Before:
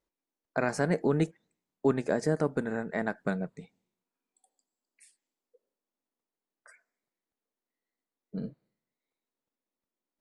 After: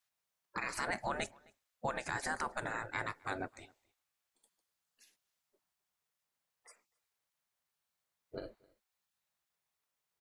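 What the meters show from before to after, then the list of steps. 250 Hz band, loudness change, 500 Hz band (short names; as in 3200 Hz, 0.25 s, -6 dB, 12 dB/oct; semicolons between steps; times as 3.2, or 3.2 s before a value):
-17.0 dB, -9.0 dB, -14.0 dB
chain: spectral gate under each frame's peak -15 dB weak; limiter -31.5 dBFS, peak gain reduction 7.5 dB; outdoor echo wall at 45 m, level -26 dB; gain +6.5 dB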